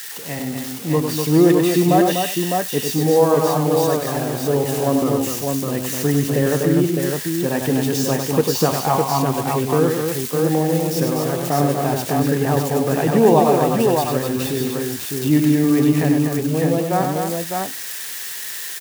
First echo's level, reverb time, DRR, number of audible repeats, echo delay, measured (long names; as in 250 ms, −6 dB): −5.5 dB, no reverb audible, no reverb audible, 4, 98 ms